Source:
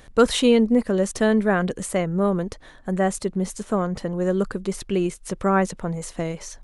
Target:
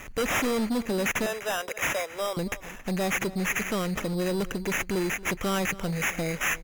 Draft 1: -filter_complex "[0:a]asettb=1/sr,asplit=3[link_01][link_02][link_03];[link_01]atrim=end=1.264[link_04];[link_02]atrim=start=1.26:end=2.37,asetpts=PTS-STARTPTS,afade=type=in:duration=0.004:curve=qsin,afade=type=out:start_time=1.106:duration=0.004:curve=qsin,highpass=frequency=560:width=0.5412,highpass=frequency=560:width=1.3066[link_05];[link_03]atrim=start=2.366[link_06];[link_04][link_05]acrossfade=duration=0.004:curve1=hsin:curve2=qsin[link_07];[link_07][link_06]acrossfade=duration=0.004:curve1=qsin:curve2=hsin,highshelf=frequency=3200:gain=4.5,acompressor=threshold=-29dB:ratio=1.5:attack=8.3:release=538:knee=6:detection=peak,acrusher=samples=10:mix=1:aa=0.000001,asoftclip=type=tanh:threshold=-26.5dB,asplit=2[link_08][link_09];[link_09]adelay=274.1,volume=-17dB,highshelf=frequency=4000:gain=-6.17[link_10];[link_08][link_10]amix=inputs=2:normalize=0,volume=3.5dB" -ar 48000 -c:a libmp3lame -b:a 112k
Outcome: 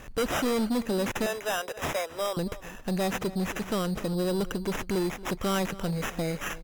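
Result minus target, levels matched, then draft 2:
8,000 Hz band −3.5 dB
-filter_complex "[0:a]asettb=1/sr,asplit=3[link_01][link_02][link_03];[link_01]atrim=end=1.264[link_04];[link_02]atrim=start=1.26:end=2.37,asetpts=PTS-STARTPTS,afade=type=in:duration=0.004:curve=qsin,afade=type=out:start_time=1.106:duration=0.004:curve=qsin,highpass=frequency=560:width=0.5412,highpass=frequency=560:width=1.3066[link_05];[link_03]atrim=start=2.366[link_06];[link_04][link_05]acrossfade=duration=0.004:curve1=hsin:curve2=qsin[link_07];[link_07][link_06]acrossfade=duration=0.004:curve1=qsin:curve2=hsin,highshelf=frequency=3200:gain=4.5,acompressor=threshold=-29dB:ratio=1.5:attack=8.3:release=538:knee=6:detection=peak,lowpass=frequency=6600:width_type=q:width=8.9,acrusher=samples=10:mix=1:aa=0.000001,asoftclip=type=tanh:threshold=-26.5dB,asplit=2[link_08][link_09];[link_09]adelay=274.1,volume=-17dB,highshelf=frequency=4000:gain=-6.17[link_10];[link_08][link_10]amix=inputs=2:normalize=0,volume=3.5dB" -ar 48000 -c:a libmp3lame -b:a 112k

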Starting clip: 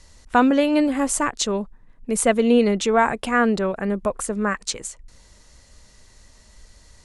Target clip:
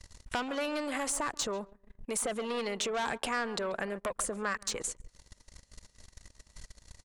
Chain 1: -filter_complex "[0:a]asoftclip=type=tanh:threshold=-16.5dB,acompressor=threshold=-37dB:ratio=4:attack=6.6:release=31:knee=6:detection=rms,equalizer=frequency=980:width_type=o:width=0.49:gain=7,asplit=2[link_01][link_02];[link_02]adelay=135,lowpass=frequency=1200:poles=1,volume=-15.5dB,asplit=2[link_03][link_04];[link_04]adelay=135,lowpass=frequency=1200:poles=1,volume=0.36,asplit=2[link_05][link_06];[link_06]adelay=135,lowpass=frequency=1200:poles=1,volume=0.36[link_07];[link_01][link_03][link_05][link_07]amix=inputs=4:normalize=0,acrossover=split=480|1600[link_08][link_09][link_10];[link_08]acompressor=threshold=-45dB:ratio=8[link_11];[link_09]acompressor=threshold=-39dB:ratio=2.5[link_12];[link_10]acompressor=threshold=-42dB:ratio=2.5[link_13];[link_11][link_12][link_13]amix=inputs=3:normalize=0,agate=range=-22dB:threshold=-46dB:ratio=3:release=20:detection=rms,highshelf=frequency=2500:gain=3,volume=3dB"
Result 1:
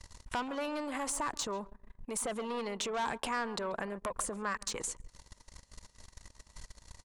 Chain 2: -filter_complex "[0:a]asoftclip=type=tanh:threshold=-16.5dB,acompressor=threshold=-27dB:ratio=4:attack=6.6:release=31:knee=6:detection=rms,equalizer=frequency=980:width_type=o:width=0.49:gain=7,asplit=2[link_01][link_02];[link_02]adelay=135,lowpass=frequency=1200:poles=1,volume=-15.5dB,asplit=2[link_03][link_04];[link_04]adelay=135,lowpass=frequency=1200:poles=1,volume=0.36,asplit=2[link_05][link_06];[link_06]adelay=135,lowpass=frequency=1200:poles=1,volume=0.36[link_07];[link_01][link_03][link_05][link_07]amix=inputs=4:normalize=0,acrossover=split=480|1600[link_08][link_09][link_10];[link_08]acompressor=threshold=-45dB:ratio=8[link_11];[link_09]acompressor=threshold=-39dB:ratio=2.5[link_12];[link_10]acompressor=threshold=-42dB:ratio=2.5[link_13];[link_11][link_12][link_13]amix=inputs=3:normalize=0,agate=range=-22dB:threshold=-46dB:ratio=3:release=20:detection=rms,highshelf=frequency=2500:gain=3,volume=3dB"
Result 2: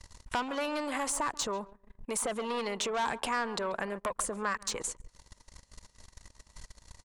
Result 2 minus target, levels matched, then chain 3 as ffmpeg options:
1,000 Hz band +2.5 dB
-filter_complex "[0:a]asoftclip=type=tanh:threshold=-16.5dB,acompressor=threshold=-27dB:ratio=4:attack=6.6:release=31:knee=6:detection=rms,asplit=2[link_01][link_02];[link_02]adelay=135,lowpass=frequency=1200:poles=1,volume=-15.5dB,asplit=2[link_03][link_04];[link_04]adelay=135,lowpass=frequency=1200:poles=1,volume=0.36,asplit=2[link_05][link_06];[link_06]adelay=135,lowpass=frequency=1200:poles=1,volume=0.36[link_07];[link_01][link_03][link_05][link_07]amix=inputs=4:normalize=0,acrossover=split=480|1600[link_08][link_09][link_10];[link_08]acompressor=threshold=-45dB:ratio=8[link_11];[link_09]acompressor=threshold=-39dB:ratio=2.5[link_12];[link_10]acompressor=threshold=-42dB:ratio=2.5[link_13];[link_11][link_12][link_13]amix=inputs=3:normalize=0,agate=range=-22dB:threshold=-46dB:ratio=3:release=20:detection=rms,highshelf=frequency=2500:gain=3,volume=3dB"

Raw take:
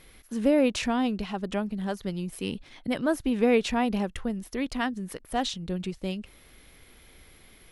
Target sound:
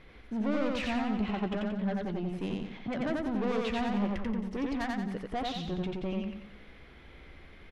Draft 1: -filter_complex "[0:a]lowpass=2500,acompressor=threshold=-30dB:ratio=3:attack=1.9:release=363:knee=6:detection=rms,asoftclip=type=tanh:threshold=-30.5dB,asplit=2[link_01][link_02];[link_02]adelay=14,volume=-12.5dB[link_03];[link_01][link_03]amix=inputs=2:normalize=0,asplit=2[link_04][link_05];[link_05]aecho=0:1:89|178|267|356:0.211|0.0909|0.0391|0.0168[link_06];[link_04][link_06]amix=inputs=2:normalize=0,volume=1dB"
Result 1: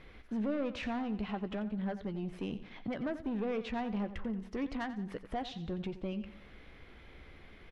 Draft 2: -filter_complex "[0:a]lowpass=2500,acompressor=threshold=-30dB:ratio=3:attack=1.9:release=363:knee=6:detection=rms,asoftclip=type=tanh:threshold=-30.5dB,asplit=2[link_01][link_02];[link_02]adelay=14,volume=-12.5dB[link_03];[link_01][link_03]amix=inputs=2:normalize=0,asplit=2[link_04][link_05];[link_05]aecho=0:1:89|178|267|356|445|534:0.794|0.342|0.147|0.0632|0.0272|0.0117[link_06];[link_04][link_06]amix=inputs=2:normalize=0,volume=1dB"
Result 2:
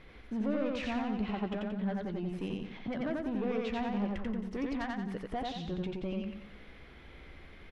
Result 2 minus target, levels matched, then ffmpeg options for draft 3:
downward compressor: peak gain reduction +7 dB
-filter_complex "[0:a]lowpass=2500,acompressor=threshold=-19.5dB:ratio=3:attack=1.9:release=363:knee=6:detection=rms,asoftclip=type=tanh:threshold=-30.5dB,asplit=2[link_01][link_02];[link_02]adelay=14,volume=-12.5dB[link_03];[link_01][link_03]amix=inputs=2:normalize=0,asplit=2[link_04][link_05];[link_05]aecho=0:1:89|178|267|356|445|534:0.794|0.342|0.147|0.0632|0.0272|0.0117[link_06];[link_04][link_06]amix=inputs=2:normalize=0,volume=1dB"

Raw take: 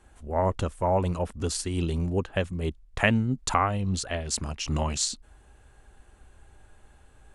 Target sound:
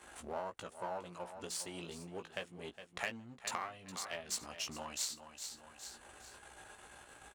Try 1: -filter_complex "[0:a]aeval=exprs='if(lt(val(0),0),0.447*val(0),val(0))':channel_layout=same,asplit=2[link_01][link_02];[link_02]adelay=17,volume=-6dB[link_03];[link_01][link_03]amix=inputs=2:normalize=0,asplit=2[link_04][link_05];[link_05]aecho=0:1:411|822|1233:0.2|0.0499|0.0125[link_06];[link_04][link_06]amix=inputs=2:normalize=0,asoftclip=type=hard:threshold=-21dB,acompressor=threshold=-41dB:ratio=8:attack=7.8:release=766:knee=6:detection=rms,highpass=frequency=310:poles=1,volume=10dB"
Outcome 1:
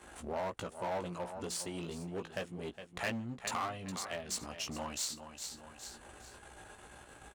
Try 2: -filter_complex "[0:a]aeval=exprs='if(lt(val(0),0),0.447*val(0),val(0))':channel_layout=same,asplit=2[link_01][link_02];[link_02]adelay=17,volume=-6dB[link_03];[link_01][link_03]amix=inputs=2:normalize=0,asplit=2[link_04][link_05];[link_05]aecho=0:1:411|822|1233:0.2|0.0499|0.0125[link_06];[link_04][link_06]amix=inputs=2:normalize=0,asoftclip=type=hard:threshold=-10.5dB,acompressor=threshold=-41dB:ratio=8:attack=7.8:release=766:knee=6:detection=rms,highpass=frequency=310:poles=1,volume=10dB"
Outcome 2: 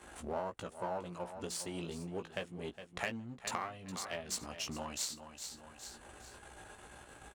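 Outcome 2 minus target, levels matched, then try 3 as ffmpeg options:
250 Hz band +4.5 dB
-filter_complex "[0:a]aeval=exprs='if(lt(val(0),0),0.447*val(0),val(0))':channel_layout=same,asplit=2[link_01][link_02];[link_02]adelay=17,volume=-6dB[link_03];[link_01][link_03]amix=inputs=2:normalize=0,asplit=2[link_04][link_05];[link_05]aecho=0:1:411|822|1233:0.2|0.0499|0.0125[link_06];[link_04][link_06]amix=inputs=2:normalize=0,asoftclip=type=hard:threshold=-10.5dB,acompressor=threshold=-41dB:ratio=8:attack=7.8:release=766:knee=6:detection=rms,highpass=frequency=760:poles=1,volume=10dB"

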